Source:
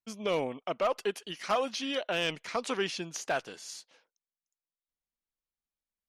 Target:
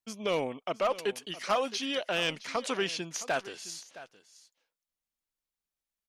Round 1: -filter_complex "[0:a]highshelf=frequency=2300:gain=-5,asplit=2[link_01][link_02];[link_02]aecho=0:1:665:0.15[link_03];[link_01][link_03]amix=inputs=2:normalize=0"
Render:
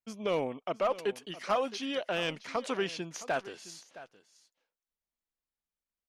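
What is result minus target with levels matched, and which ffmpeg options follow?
4,000 Hz band −3.5 dB
-filter_complex "[0:a]highshelf=frequency=2300:gain=2.5,asplit=2[link_01][link_02];[link_02]aecho=0:1:665:0.15[link_03];[link_01][link_03]amix=inputs=2:normalize=0"

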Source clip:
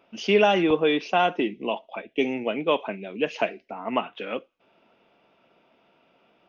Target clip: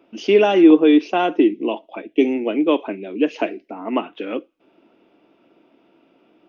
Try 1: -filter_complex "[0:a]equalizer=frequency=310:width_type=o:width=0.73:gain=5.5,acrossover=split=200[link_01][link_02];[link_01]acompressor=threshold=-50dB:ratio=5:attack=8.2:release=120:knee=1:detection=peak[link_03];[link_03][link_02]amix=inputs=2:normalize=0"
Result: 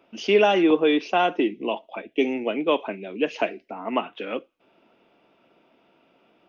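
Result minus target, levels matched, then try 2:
250 Hz band −3.0 dB
-filter_complex "[0:a]equalizer=frequency=310:width_type=o:width=0.73:gain=16,acrossover=split=200[link_01][link_02];[link_01]acompressor=threshold=-50dB:ratio=5:attack=8.2:release=120:knee=1:detection=peak[link_03];[link_03][link_02]amix=inputs=2:normalize=0"

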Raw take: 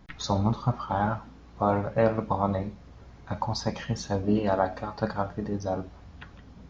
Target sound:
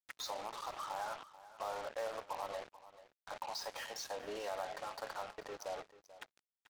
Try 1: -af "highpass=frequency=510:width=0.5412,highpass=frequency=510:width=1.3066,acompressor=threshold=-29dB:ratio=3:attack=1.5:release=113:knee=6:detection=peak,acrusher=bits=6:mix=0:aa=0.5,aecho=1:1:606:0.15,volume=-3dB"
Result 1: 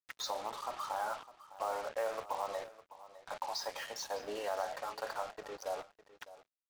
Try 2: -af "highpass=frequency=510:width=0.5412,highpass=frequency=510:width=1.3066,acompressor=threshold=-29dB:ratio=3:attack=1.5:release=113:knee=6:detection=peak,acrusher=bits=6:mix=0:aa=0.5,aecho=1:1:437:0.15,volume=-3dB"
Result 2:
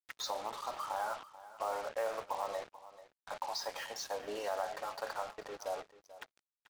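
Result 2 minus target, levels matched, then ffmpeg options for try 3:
downward compressor: peak gain reduction −4.5 dB
-af "highpass=frequency=510:width=0.5412,highpass=frequency=510:width=1.3066,acompressor=threshold=-36dB:ratio=3:attack=1.5:release=113:knee=6:detection=peak,acrusher=bits=6:mix=0:aa=0.5,aecho=1:1:437:0.15,volume=-3dB"

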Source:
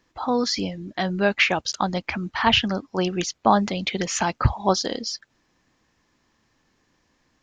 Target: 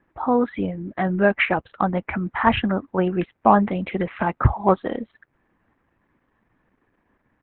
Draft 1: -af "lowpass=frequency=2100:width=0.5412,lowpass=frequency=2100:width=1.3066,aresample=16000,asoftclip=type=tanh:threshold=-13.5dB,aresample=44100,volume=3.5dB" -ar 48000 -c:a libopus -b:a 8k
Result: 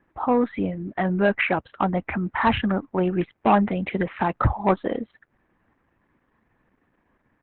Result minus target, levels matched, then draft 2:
soft clipping: distortion +16 dB
-af "lowpass=frequency=2100:width=0.5412,lowpass=frequency=2100:width=1.3066,aresample=16000,asoftclip=type=tanh:threshold=-2dB,aresample=44100,volume=3.5dB" -ar 48000 -c:a libopus -b:a 8k

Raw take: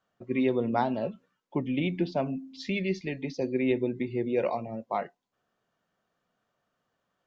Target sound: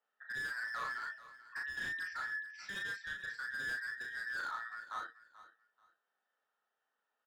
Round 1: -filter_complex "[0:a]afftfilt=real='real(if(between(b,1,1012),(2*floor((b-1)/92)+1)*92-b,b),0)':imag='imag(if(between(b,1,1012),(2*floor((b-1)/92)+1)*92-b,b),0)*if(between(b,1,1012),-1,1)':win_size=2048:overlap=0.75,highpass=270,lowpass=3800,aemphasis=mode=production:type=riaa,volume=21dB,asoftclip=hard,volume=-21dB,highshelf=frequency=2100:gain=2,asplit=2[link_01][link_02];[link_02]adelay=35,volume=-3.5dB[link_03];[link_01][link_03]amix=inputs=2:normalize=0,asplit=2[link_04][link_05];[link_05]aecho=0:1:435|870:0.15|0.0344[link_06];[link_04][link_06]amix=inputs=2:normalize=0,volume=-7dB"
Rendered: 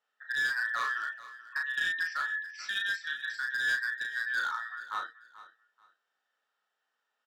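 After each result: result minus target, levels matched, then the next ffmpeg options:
gain into a clipping stage and back: distortion −8 dB; 4,000 Hz band +3.0 dB
-filter_complex "[0:a]afftfilt=real='real(if(between(b,1,1012),(2*floor((b-1)/92)+1)*92-b,b),0)':imag='imag(if(between(b,1,1012),(2*floor((b-1)/92)+1)*92-b,b),0)*if(between(b,1,1012),-1,1)':win_size=2048:overlap=0.75,highpass=270,lowpass=3800,aemphasis=mode=production:type=riaa,volume=28.5dB,asoftclip=hard,volume=-28.5dB,highshelf=frequency=2100:gain=2,asplit=2[link_01][link_02];[link_02]adelay=35,volume=-3.5dB[link_03];[link_01][link_03]amix=inputs=2:normalize=0,asplit=2[link_04][link_05];[link_05]aecho=0:1:435|870:0.15|0.0344[link_06];[link_04][link_06]amix=inputs=2:normalize=0,volume=-7dB"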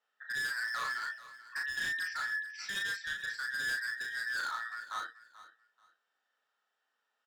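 4,000 Hz band +4.5 dB
-filter_complex "[0:a]afftfilt=real='real(if(between(b,1,1012),(2*floor((b-1)/92)+1)*92-b,b),0)':imag='imag(if(between(b,1,1012),(2*floor((b-1)/92)+1)*92-b,b),0)*if(between(b,1,1012),-1,1)':win_size=2048:overlap=0.75,highpass=270,lowpass=3800,aemphasis=mode=production:type=riaa,volume=28.5dB,asoftclip=hard,volume=-28.5dB,highshelf=frequency=2100:gain=-9.5,asplit=2[link_01][link_02];[link_02]adelay=35,volume=-3.5dB[link_03];[link_01][link_03]amix=inputs=2:normalize=0,asplit=2[link_04][link_05];[link_05]aecho=0:1:435|870:0.15|0.0344[link_06];[link_04][link_06]amix=inputs=2:normalize=0,volume=-7dB"

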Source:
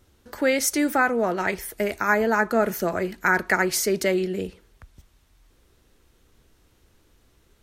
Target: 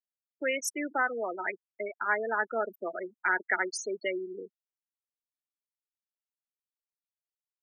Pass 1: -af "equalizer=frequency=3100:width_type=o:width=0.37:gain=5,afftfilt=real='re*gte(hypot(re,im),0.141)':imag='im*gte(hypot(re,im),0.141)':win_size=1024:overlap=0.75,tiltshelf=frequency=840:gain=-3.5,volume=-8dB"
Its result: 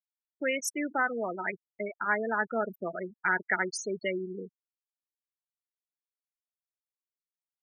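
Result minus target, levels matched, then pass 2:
250 Hz band +3.0 dB
-af "equalizer=frequency=3100:width_type=o:width=0.37:gain=5,afftfilt=real='re*gte(hypot(re,im),0.141)':imag='im*gte(hypot(re,im),0.141)':win_size=1024:overlap=0.75,highpass=frequency=280:width=0.5412,highpass=frequency=280:width=1.3066,tiltshelf=frequency=840:gain=-3.5,volume=-8dB"

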